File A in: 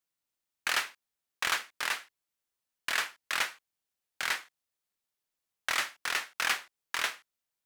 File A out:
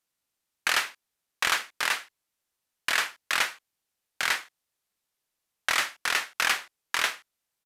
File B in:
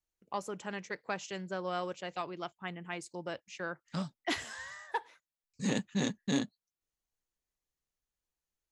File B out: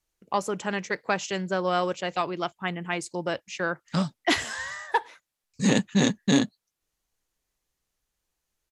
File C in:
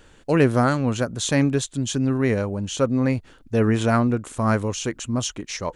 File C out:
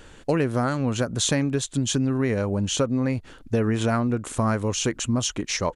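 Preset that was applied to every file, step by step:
compression 6:1, threshold -24 dBFS; resampled via 32 kHz; peak normalisation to -9 dBFS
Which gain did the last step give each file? +5.5 dB, +10.5 dB, +4.5 dB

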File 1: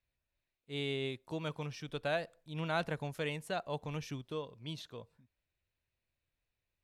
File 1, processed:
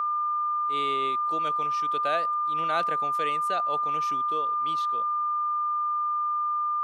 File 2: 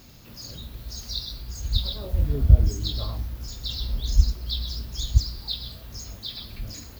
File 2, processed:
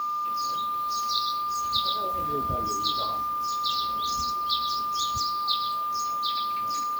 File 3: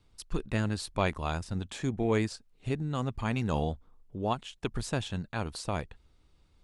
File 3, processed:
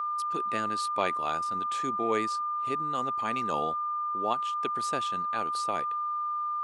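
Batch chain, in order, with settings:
whistle 1.2 kHz -29 dBFS; high-pass 330 Hz 12 dB/octave; peak normalisation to -12 dBFS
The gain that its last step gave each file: +5.0 dB, +3.0 dB, +0.5 dB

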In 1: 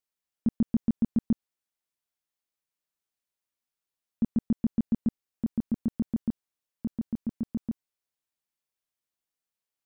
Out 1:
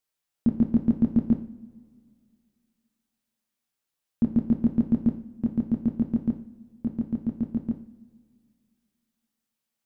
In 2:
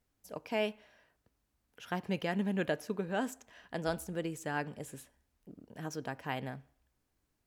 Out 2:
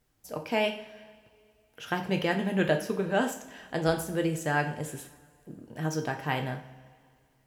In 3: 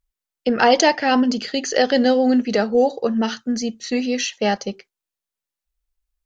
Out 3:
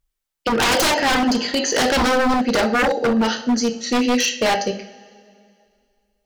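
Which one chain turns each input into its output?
two-slope reverb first 0.46 s, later 2.3 s, from -19 dB, DRR 4 dB; wavefolder -15.5 dBFS; peak normalisation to -12 dBFS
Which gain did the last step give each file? +3.5 dB, +6.0 dB, +3.5 dB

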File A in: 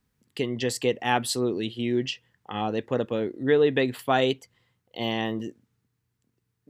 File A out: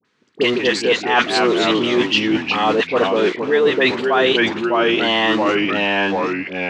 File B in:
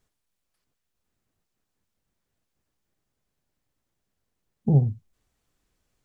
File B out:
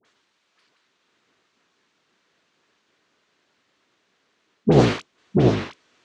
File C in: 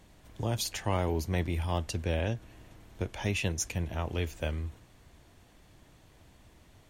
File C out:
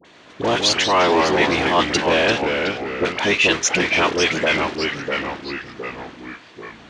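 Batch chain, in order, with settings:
octave divider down 1 oct, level -3 dB; in parallel at -4.5 dB: bit crusher 6-bit; on the sum: cabinet simulation 430–5600 Hz, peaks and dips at 570 Hz -5 dB, 810 Hz -7 dB, 5.2 kHz -5 dB; phase dispersion highs, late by 50 ms, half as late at 1.1 kHz; dynamic bell 960 Hz, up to +5 dB, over -36 dBFS, Q 0.95; ever faster or slower copies 104 ms, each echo -2 st, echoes 3, each echo -6 dB; reverse; compression 6:1, threshold -30 dBFS; reverse; peak normalisation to -3 dBFS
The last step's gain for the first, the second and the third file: +16.5 dB, +19.5 dB, +18.0 dB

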